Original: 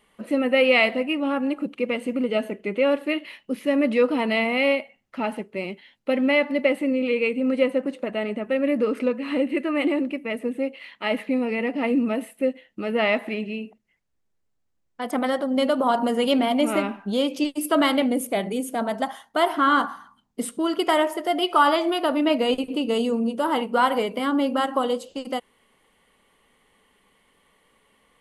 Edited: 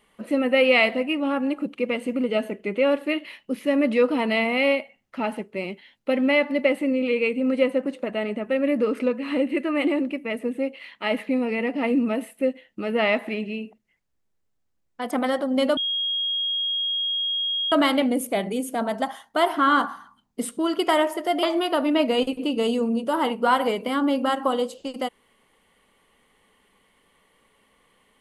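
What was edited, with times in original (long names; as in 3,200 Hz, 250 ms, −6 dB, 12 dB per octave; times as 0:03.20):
0:15.77–0:17.72: beep over 3,270 Hz −22.5 dBFS
0:21.43–0:21.74: remove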